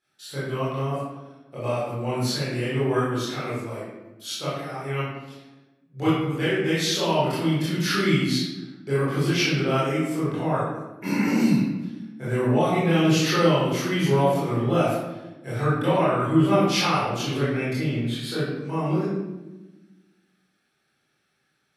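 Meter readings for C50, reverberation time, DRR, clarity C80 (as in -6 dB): -2.0 dB, 1.1 s, -12.0 dB, 1.5 dB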